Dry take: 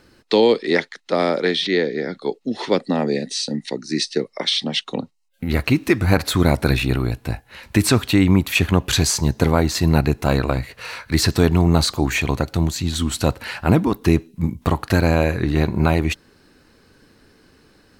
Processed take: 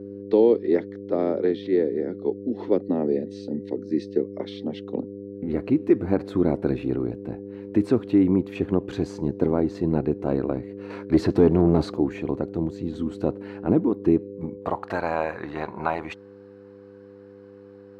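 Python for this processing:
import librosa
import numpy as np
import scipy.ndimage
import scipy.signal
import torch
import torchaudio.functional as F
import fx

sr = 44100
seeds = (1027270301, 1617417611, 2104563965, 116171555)

y = fx.leveller(x, sr, passes=2, at=(10.9, 11.97))
y = fx.dmg_buzz(y, sr, base_hz=100.0, harmonics=5, level_db=-32.0, tilt_db=-3, odd_only=False)
y = fx.filter_sweep_bandpass(y, sr, from_hz=350.0, to_hz=950.0, start_s=14.1, end_s=15.08, q=1.6)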